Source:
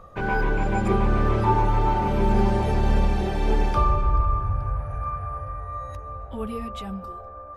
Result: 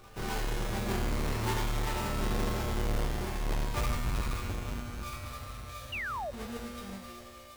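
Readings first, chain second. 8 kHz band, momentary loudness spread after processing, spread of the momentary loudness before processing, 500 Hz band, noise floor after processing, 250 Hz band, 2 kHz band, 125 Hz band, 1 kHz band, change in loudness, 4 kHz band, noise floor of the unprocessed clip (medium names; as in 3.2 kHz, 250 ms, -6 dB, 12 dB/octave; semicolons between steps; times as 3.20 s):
no reading, 10 LU, 13 LU, -11.0 dB, -49 dBFS, -10.5 dB, -6.0 dB, -10.0 dB, -13.0 dB, -10.5 dB, +1.5 dB, -40 dBFS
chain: square wave that keeps the level; feedback comb 120 Hz, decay 2 s, mix 90%; in parallel at -6.5 dB: hard clipper -33.5 dBFS, distortion -12 dB; on the sum: pre-echo 249 ms -22.5 dB; painted sound fall, 5.92–6.31 s, 540–3000 Hz -36 dBFS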